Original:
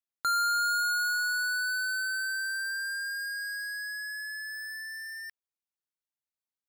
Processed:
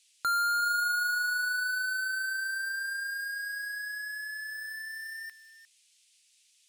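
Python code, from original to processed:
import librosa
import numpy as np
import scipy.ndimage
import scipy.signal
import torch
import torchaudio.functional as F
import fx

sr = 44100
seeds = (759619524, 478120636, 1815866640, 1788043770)

p1 = x + fx.echo_single(x, sr, ms=353, db=-14.5, dry=0)
p2 = fx.dmg_noise_band(p1, sr, seeds[0], low_hz=2400.0, high_hz=10000.0, level_db=-66.0)
y = fx.dynamic_eq(p2, sr, hz=5900.0, q=1.4, threshold_db=-48.0, ratio=4.0, max_db=-6)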